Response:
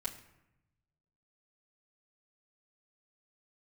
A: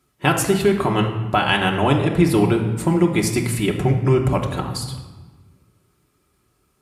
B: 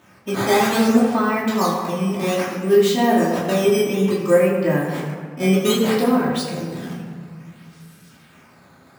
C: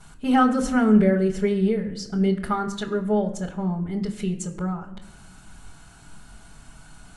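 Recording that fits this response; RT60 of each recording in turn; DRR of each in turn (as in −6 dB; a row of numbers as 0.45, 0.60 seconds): C; 1.3 s, 1.8 s, non-exponential decay; −0.5, −7.0, −7.5 decibels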